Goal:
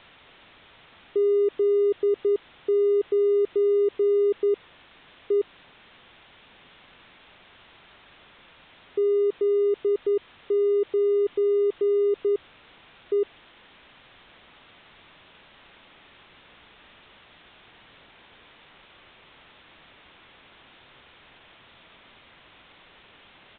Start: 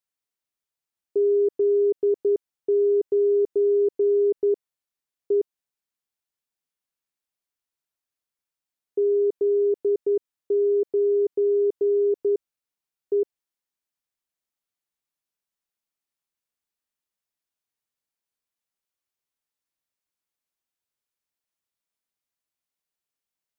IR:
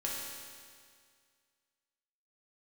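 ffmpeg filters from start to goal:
-af "aeval=exprs='val(0)+0.5*0.015*sgn(val(0))':c=same,aresample=8000,aresample=44100,volume=-1.5dB"

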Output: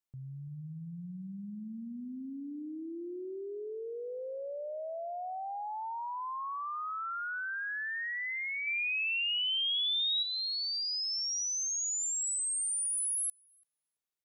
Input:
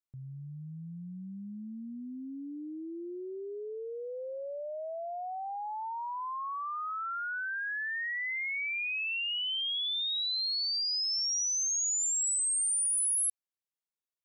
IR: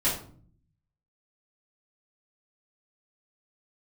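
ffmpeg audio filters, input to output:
-filter_complex "[0:a]asettb=1/sr,asplit=3[a][b][c];[a]atrim=end=8.674[d];[b]atrim=start=8.67:end=10.23,asetpts=PTS-STARTPTS,afade=t=in:d=0.004:c=qsin,afade=t=out:st=1.556:d=0.004:c=qsin,highshelf=f=2.2k:g=9[e];[c]atrim=start=10.226[f];[d][e]acrossfade=d=0.004:c1=hsin:c2=qsin[g];[g][f]acrossfade=d=0.004:c1=qsin:c2=hsin,acompressor=threshold=-38dB:ratio=1.5,asplit=2[h][i];[i]adelay=335,lowpass=f=1.6k:p=1,volume=-16.5dB,asplit=2[j][k];[k]adelay=335,lowpass=f=1.6k:p=1,volume=0.35,asplit=2[l][m];[m]adelay=335,lowpass=f=1.6k:p=1,volume=0.35[n];[h][j][l][n]amix=inputs=4:normalize=0"

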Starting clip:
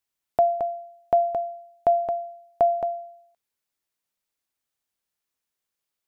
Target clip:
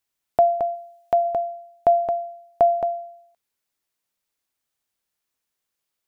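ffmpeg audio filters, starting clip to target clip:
-filter_complex "[0:a]asplit=3[a][b][c];[a]afade=t=out:st=0.74:d=0.02[d];[b]tiltshelf=f=1.2k:g=-5,afade=t=in:st=0.74:d=0.02,afade=t=out:st=1.24:d=0.02[e];[c]afade=t=in:st=1.24:d=0.02[f];[d][e][f]amix=inputs=3:normalize=0,volume=3dB"

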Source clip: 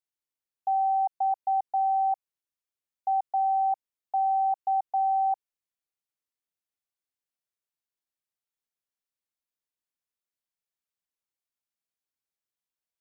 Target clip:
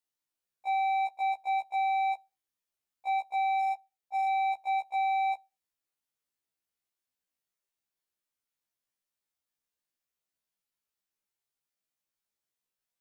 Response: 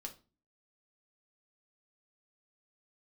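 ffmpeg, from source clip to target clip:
-filter_complex "[0:a]alimiter=level_in=1.5dB:limit=-24dB:level=0:latency=1,volume=-1.5dB,asettb=1/sr,asplit=3[a][b][c];[a]atrim=end=3.604[d];[b]atrim=start=3.6:end=4.27,asetpts=PTS-STARTPTS,afade=t=in:d=0.004:c=qsin,afade=t=out:st=0.666:d=0.004:c=qsin,tremolo=f=25:d=0.519[e];[c]atrim=start=4.266[f];[d][e]acrossfade=d=0.004:c1=hsin:c2=qsin[g];[g][f]acrossfade=d=0.004:c1=qsin:c2=hsin,asoftclip=type=hard:threshold=-33dB,asplit=2[h][i];[1:a]atrim=start_sample=2205[j];[i][j]afir=irnorm=-1:irlink=0,volume=-15dB[k];[h][k]amix=inputs=2:normalize=0,afftfilt=real='re*1.73*eq(mod(b,3),0)':imag='im*1.73*eq(mod(b,3),0)':win_size=2048:overlap=0.75,volume=3.5dB"

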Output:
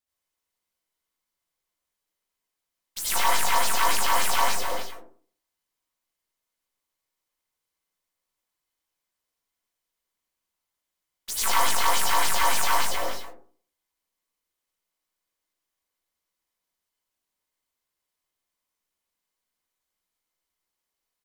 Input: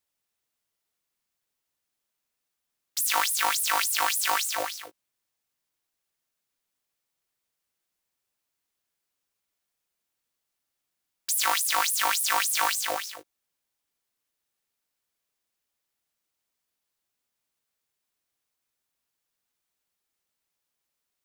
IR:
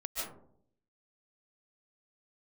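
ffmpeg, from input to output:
-filter_complex "[0:a]asplit=2[a][b];[b]asetrate=33038,aresample=44100,atempo=1.33484,volume=-4dB[c];[a][c]amix=inputs=2:normalize=0,aeval=exprs='0.398*(cos(1*acos(clip(val(0)/0.398,-1,1)))-cos(1*PI/2))+0.0158*(cos(7*acos(clip(val(0)/0.398,-1,1)))-cos(7*PI/2))+0.02*(cos(8*acos(clip(val(0)/0.398,-1,1)))-cos(8*PI/2))':c=same[d];[1:a]atrim=start_sample=2205,asetrate=70560,aresample=44100[e];[d][e]afir=irnorm=-1:irlink=0,volume=2dB"

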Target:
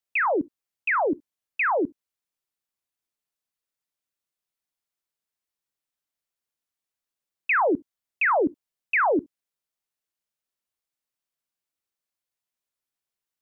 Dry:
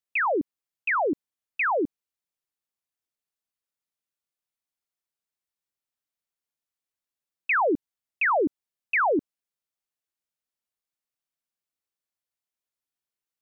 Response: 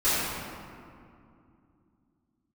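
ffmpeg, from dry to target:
-filter_complex "[0:a]asplit=2[a][b];[1:a]atrim=start_sample=2205,atrim=end_sample=3087,lowshelf=f=330:g=-6.5[c];[b][c]afir=irnorm=-1:irlink=0,volume=-27dB[d];[a][d]amix=inputs=2:normalize=0,volume=1dB"

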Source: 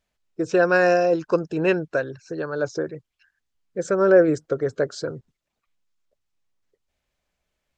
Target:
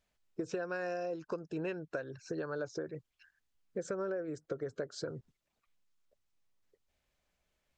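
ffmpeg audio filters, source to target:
-af "acompressor=threshold=-32dB:ratio=12,volume=-2.5dB"

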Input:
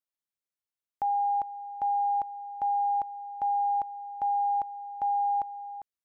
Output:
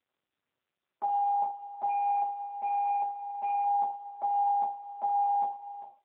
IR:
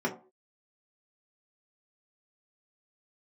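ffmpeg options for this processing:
-filter_complex "[0:a]asettb=1/sr,asplit=3[a][b][c];[a]atrim=end=1.894[d];[b]atrim=start=1.89:end=3.64,asetpts=PTS-STARTPTS,afade=t=in:d=0.004:c=qsin,afade=t=out:st=1.746:d=0.004:c=qsin,asplit=2[e][f];[f]highpass=f=720:p=1,volume=13dB,asoftclip=type=tanh:threshold=-23dB[g];[e][g]amix=inputs=2:normalize=0,lowpass=f=1.1k:p=1,volume=-6dB[h];[c]atrim=start=3.636[i];[d][h]acrossfade=d=0.004:c1=hsin:c2=qsin[j];[j][i]acrossfade=d=0.004:c1=qsin:c2=hsin[k];[1:a]atrim=start_sample=2205[l];[k][l]afir=irnorm=-1:irlink=0,volume=-7.5dB" -ar 8000 -c:a libopencore_amrnb -b:a 5900

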